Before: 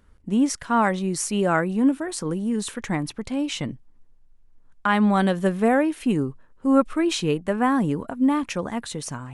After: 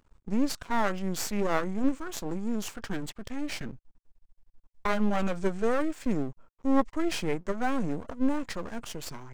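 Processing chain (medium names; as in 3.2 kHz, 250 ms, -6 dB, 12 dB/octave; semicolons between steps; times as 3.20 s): half-wave rectifier; formant shift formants -4 st; trim -1.5 dB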